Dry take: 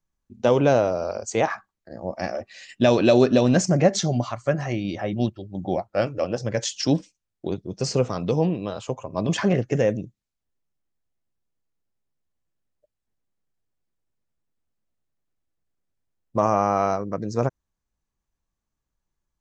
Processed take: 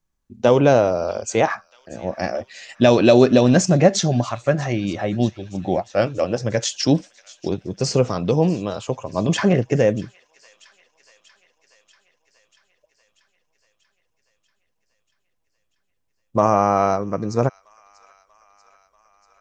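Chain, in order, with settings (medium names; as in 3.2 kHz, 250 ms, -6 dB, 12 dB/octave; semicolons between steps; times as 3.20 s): feedback echo behind a high-pass 638 ms, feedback 69%, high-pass 1.9 kHz, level -19.5 dB; trim +4 dB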